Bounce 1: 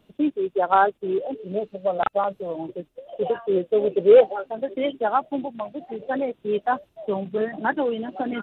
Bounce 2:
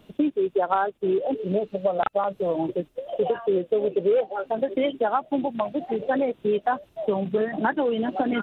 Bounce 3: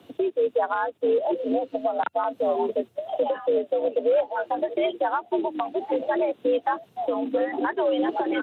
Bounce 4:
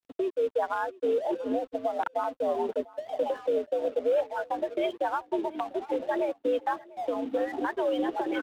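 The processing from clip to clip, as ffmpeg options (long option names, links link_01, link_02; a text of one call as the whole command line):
ffmpeg -i in.wav -af "acompressor=threshold=-27dB:ratio=6,volume=7dB" out.wav
ffmpeg -i in.wav -af "alimiter=limit=-16.5dB:level=0:latency=1:release=286,afreqshift=80,volume=2dB" out.wav
ffmpeg -i in.wav -af "aeval=exprs='sgn(val(0))*max(abs(val(0))-0.00501,0)':channel_layout=same,aecho=1:1:695:0.0794,volume=-4dB" out.wav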